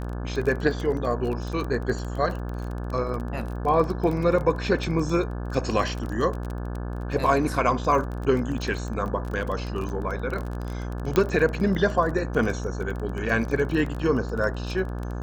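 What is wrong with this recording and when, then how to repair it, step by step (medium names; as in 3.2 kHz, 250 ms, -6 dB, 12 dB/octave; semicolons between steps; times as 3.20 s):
buzz 60 Hz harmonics 29 -31 dBFS
crackle 22 per s -29 dBFS
11.16 s: pop -9 dBFS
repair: de-click; de-hum 60 Hz, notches 29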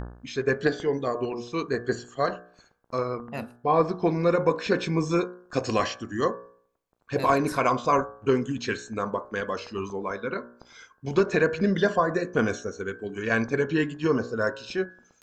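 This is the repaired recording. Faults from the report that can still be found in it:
nothing left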